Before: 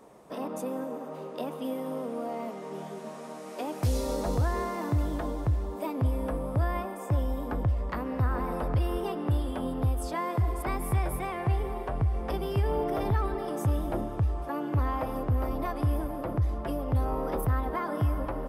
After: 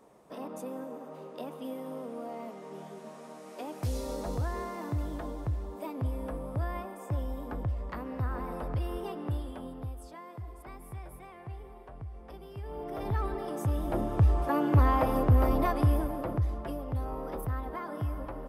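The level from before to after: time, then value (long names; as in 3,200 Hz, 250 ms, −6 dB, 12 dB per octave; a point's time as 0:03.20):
0:09.27 −5.5 dB
0:10.21 −15.5 dB
0:12.55 −15.5 dB
0:13.20 −3 dB
0:13.73 −3 dB
0:14.28 +5 dB
0:15.57 +5 dB
0:16.95 −6.5 dB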